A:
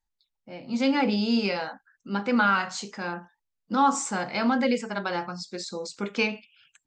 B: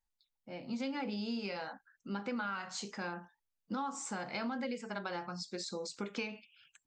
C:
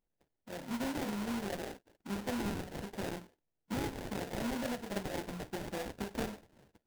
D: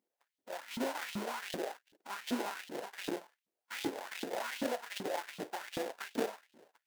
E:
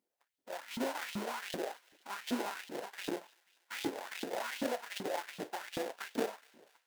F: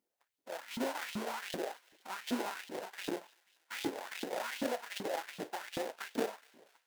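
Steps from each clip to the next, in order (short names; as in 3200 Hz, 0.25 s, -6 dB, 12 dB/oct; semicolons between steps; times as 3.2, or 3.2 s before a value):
compressor 6:1, threshold -31 dBFS, peak gain reduction 14 dB; gain -4.5 dB
sample-rate reducer 1200 Hz, jitter 20%; gain +1 dB
LFO high-pass saw up 2.6 Hz 230–3600 Hz
thin delay 0.243 s, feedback 58%, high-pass 1700 Hz, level -21 dB
record warp 78 rpm, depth 100 cents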